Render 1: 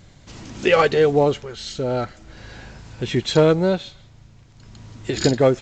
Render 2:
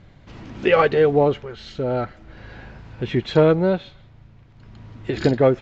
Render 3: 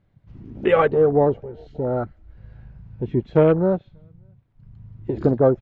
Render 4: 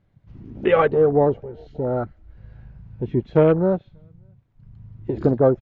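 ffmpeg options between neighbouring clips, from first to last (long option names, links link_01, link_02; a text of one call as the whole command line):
ffmpeg -i in.wav -af "lowpass=2700" out.wav
ffmpeg -i in.wav -filter_complex "[0:a]highshelf=frequency=2300:gain=-8,asplit=2[link_01][link_02];[link_02]adelay=583.1,volume=-27dB,highshelf=frequency=4000:gain=-13.1[link_03];[link_01][link_03]amix=inputs=2:normalize=0,afwtdn=0.0355" out.wav
ffmpeg -i in.wav -af "aresample=16000,aresample=44100" out.wav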